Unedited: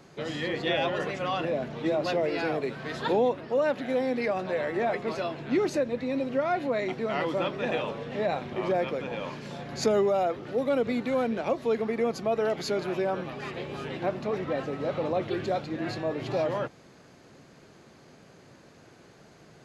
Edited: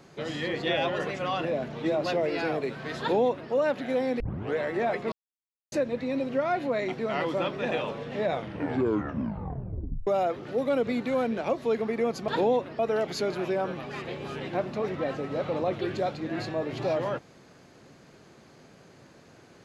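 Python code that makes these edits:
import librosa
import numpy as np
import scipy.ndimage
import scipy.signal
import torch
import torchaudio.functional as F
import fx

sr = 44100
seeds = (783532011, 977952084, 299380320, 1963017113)

y = fx.edit(x, sr, fx.duplicate(start_s=3.0, length_s=0.51, to_s=12.28),
    fx.tape_start(start_s=4.2, length_s=0.38),
    fx.silence(start_s=5.12, length_s=0.6),
    fx.tape_stop(start_s=8.22, length_s=1.85), tone=tone)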